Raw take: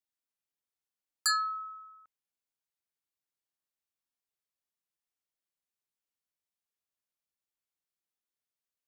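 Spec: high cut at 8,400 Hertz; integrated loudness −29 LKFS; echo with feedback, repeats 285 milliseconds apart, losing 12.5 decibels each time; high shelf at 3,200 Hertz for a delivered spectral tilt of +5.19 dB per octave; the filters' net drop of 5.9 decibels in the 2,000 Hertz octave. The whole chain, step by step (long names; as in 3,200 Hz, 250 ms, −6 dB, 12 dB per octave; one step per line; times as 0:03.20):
low-pass filter 8,400 Hz
parametric band 2,000 Hz −6 dB
high-shelf EQ 3,200 Hz −4.5 dB
repeating echo 285 ms, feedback 24%, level −12.5 dB
level +6 dB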